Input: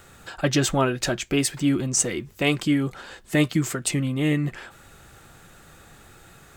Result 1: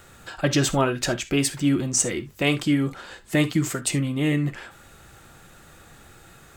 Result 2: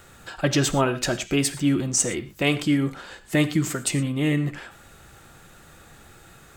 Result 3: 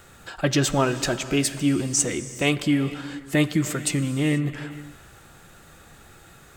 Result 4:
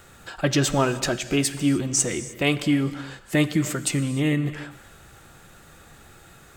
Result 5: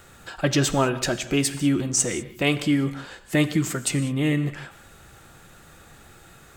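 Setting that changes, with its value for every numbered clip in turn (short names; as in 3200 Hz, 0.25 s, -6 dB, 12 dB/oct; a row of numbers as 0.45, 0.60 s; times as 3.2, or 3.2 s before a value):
non-linear reverb, gate: 90, 140, 510, 330, 220 ms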